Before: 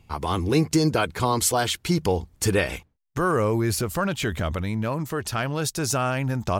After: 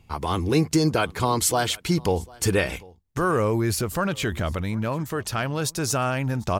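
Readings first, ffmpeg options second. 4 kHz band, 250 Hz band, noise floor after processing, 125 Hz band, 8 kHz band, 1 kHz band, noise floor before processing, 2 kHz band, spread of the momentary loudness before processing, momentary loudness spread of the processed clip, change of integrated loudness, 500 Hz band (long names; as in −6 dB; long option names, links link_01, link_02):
0.0 dB, 0.0 dB, −53 dBFS, 0.0 dB, 0.0 dB, 0.0 dB, −61 dBFS, 0.0 dB, 6 LU, 6 LU, 0.0 dB, 0.0 dB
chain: -af "aecho=1:1:747:0.0631"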